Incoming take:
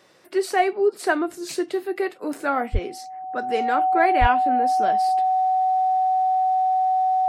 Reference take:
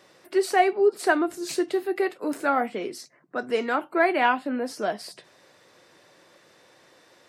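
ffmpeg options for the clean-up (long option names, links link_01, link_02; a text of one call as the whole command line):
ffmpeg -i in.wav -filter_complex "[0:a]bandreject=frequency=750:width=30,asplit=3[link_01][link_02][link_03];[link_01]afade=type=out:start_time=2.72:duration=0.02[link_04];[link_02]highpass=frequency=140:width=0.5412,highpass=frequency=140:width=1.3066,afade=type=in:start_time=2.72:duration=0.02,afade=type=out:start_time=2.84:duration=0.02[link_05];[link_03]afade=type=in:start_time=2.84:duration=0.02[link_06];[link_04][link_05][link_06]amix=inputs=3:normalize=0,asplit=3[link_07][link_08][link_09];[link_07]afade=type=out:start_time=4.2:duration=0.02[link_10];[link_08]highpass=frequency=140:width=0.5412,highpass=frequency=140:width=1.3066,afade=type=in:start_time=4.2:duration=0.02,afade=type=out:start_time=4.32:duration=0.02[link_11];[link_09]afade=type=in:start_time=4.32:duration=0.02[link_12];[link_10][link_11][link_12]amix=inputs=3:normalize=0" out.wav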